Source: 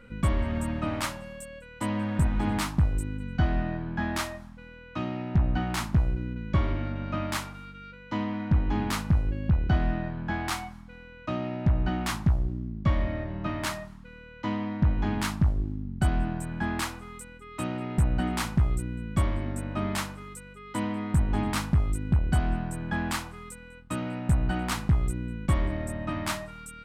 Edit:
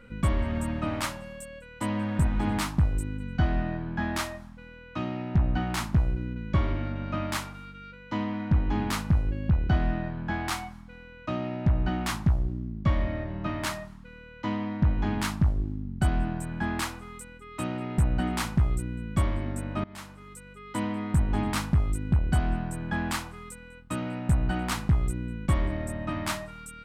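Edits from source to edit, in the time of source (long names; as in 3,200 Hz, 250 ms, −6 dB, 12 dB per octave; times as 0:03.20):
0:19.84–0:20.59: fade in, from −22.5 dB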